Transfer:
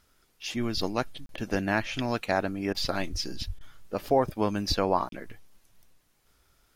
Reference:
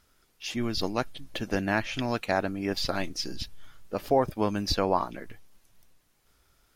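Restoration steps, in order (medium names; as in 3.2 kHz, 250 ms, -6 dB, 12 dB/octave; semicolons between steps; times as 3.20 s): 3.11–3.23 s: high-pass 140 Hz 24 dB/octave; 3.46–3.58 s: high-pass 140 Hz 24 dB/octave; interpolate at 1.26/5.09 s, 32 ms; interpolate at 1.36/2.73/3.59 s, 16 ms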